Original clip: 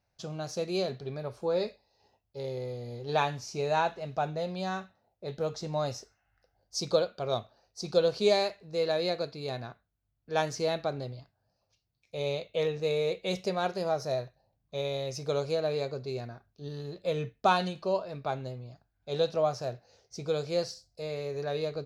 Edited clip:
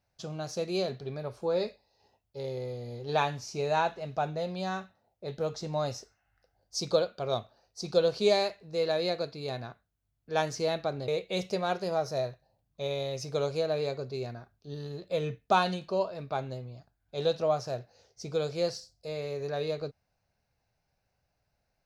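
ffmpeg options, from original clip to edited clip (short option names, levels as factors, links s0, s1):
-filter_complex "[0:a]asplit=2[s0][s1];[s0]atrim=end=11.082[s2];[s1]atrim=start=13.018[s3];[s2][s3]acrossfade=d=0.004:c1=hsin:c2=hsin"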